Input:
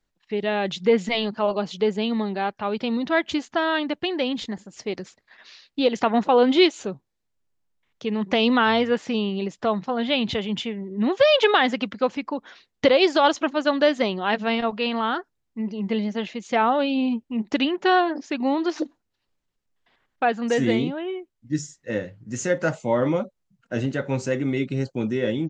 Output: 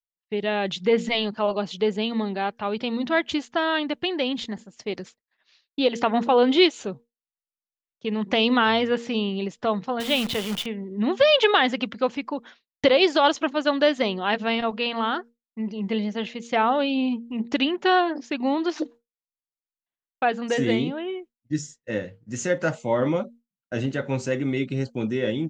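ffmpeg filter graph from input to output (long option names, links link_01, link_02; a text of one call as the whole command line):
ffmpeg -i in.wav -filter_complex "[0:a]asettb=1/sr,asplit=3[link_01][link_02][link_03];[link_01]atrim=end=10.004[link_04];[link_02]atrim=start=10:end=10.66,asetpts=PTS-STARTPTS,afade=type=in:duration=0.004:curve=qsin,afade=type=out:start_time=0.656:duration=0.004:curve=qsin,highpass=frequency=100:poles=1,acrusher=bits=6:dc=4:mix=0:aa=0.000001[link_05];[link_03]atrim=start=10.656[link_06];[link_04][link_05]acrossfade=duration=0.004:curve1=hsin:curve2=qsin[link_07];[link_07][link_06]acrossfade=duration=0.004:curve1=qsin:curve2=hsin,bandreject=frequency=234.7:width_type=h:width=4,bandreject=frequency=469.4:width_type=h:width=4,agate=range=-33dB:threshold=-37dB:ratio=3:detection=peak,equalizer=frequency=3100:width_type=o:width=0.77:gain=2.5,volume=-1dB" out.wav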